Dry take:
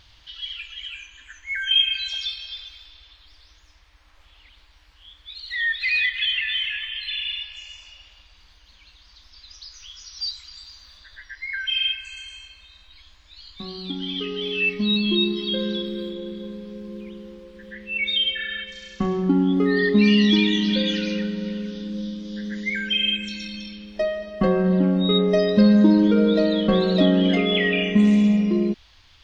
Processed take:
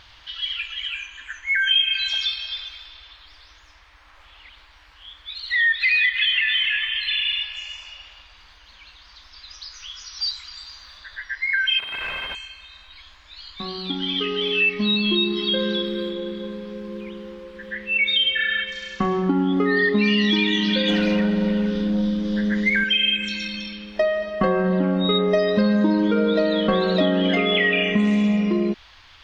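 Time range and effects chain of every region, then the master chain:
0:11.79–0:12.35: sign of each sample alone + high-frequency loss of the air 450 metres
0:20.88–0:22.84: spectral tilt −2 dB per octave + leveller curve on the samples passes 1
whole clip: parametric band 1,300 Hz +10 dB 2.8 octaves; downward compressor 2.5 to 1, threshold −18 dBFS

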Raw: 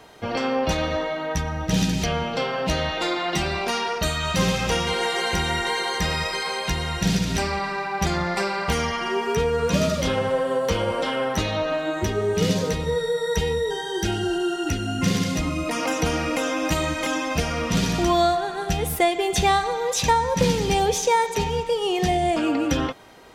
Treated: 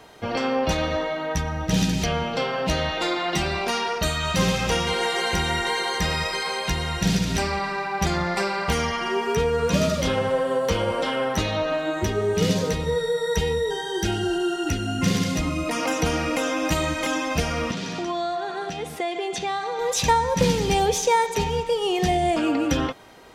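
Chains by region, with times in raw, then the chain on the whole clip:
0:17.71–0:19.79: downward compressor 4 to 1, threshold −24 dBFS + band-pass filter 200–6,100 Hz
whole clip: no processing

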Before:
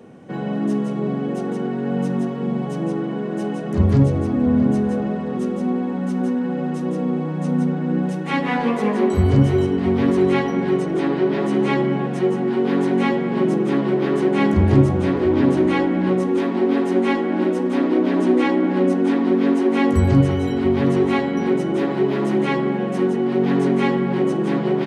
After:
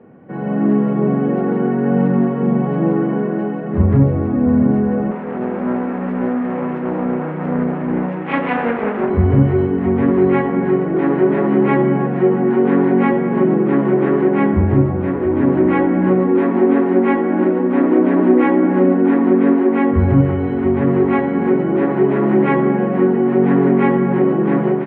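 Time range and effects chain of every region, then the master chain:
0:05.11–0:09.10: lower of the sound and its delayed copy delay 0.34 ms + high-pass filter 420 Hz 6 dB per octave + highs frequency-modulated by the lows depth 0.26 ms
whole clip: low-pass filter 2,100 Hz 24 dB per octave; automatic gain control gain up to 9 dB; level −1 dB

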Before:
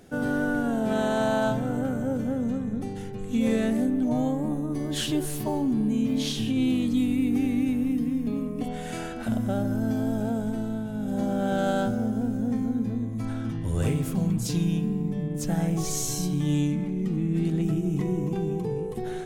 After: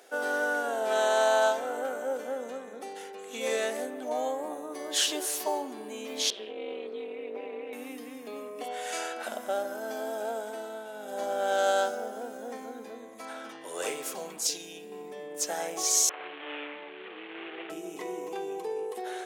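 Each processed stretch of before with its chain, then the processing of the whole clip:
0:06.30–0:07.73: high-frequency loss of the air 460 metres + comb filter 5.3 ms, depth 46% + amplitude modulation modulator 210 Hz, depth 95%
0:14.47–0:14.92: parametric band 1,100 Hz −13.5 dB 0.83 octaves + downward compressor 2 to 1, threshold −27 dBFS
0:16.09–0:17.70: variable-slope delta modulation 16 kbit/s + high-pass filter 280 Hz + low-shelf EQ 380 Hz −5 dB
whole clip: high-pass filter 470 Hz 24 dB per octave; dynamic equaliser 6,000 Hz, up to +6 dB, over −51 dBFS, Q 1.4; level +2.5 dB

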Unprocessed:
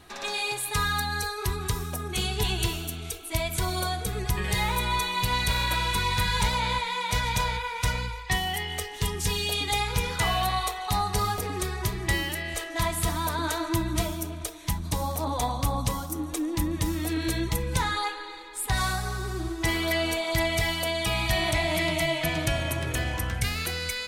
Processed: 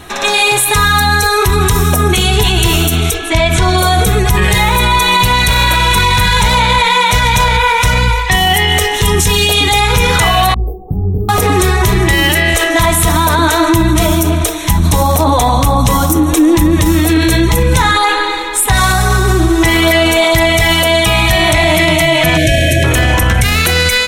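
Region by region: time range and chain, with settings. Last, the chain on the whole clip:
0:03.13–0:03.77: low-pass filter 5,500 Hz + steady tone 1,700 Hz −51 dBFS
0:10.54–0:11.29: inverse Chebyshev band-stop filter 1,800–7,300 Hz, stop band 80 dB + downward compressor 2 to 1, threshold −33 dBFS + micro pitch shift up and down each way 32 cents
0:22.37–0:22.84: variable-slope delta modulation 64 kbit/s + linear-phase brick-wall band-stop 730–1,500 Hz
whole clip: notch filter 4,700 Hz, Q 5.3; automatic gain control gain up to 6 dB; boost into a limiter +19.5 dB; level −1 dB

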